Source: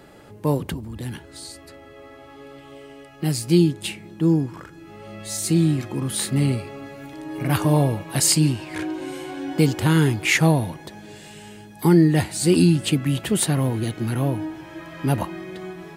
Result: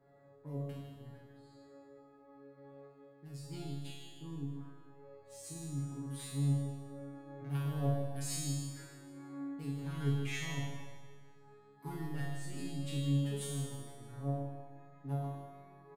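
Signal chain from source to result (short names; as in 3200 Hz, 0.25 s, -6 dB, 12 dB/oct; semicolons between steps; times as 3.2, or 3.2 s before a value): Wiener smoothing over 15 samples; random-step tremolo; in parallel at -8 dB: soft clip -22.5 dBFS, distortion -7 dB; on the sum: resonator 140 Hz, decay 0.75 s, harmonics all, mix 100%; on a send: feedback echo 0.154 s, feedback 51%, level -10.5 dB; on the sum: Schroeder reverb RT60 1.1 s, combs from 33 ms, DRR 2 dB; gain -4.5 dB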